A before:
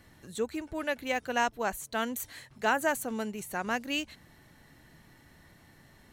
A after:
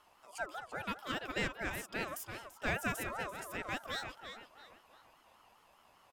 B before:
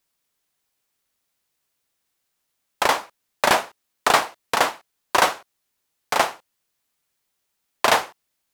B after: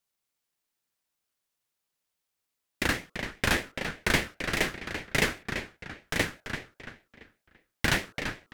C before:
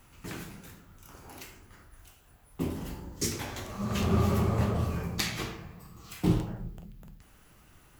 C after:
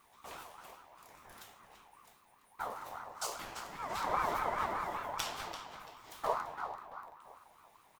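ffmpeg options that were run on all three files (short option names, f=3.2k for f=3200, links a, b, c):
-filter_complex "[0:a]bandreject=f=60:t=h:w=6,bandreject=f=120:t=h:w=6,bandreject=f=180:t=h:w=6,bandreject=f=240:t=h:w=6,bandreject=f=300:t=h:w=6,bandreject=f=360:t=h:w=6,bandreject=f=420:t=h:w=6,bandreject=f=480:t=h:w=6,bandreject=f=540:t=h:w=6,asplit=2[a][b];[b]adelay=338,lowpass=f=4.3k:p=1,volume=-7.5dB,asplit=2[c][d];[d]adelay=338,lowpass=f=4.3k:p=1,volume=0.38,asplit=2[e][f];[f]adelay=338,lowpass=f=4.3k:p=1,volume=0.38,asplit=2[g][h];[h]adelay=338,lowpass=f=4.3k:p=1,volume=0.38[i];[a][c][e][g][i]amix=inputs=5:normalize=0,aeval=exprs='val(0)*sin(2*PI*970*n/s+970*0.2/5*sin(2*PI*5*n/s))':c=same,volume=-5dB"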